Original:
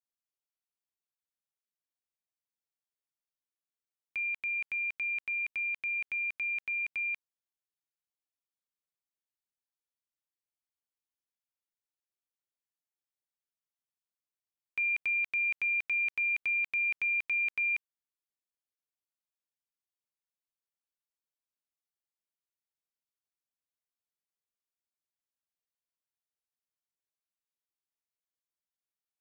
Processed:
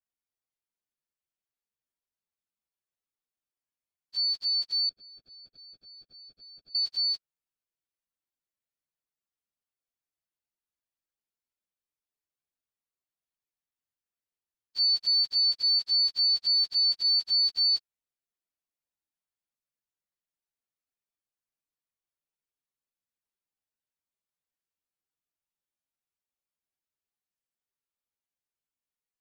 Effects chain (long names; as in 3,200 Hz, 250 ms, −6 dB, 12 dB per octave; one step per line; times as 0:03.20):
partials spread apart or drawn together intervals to 128%
0:04.89–0:06.75: moving average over 45 samples
level +6.5 dB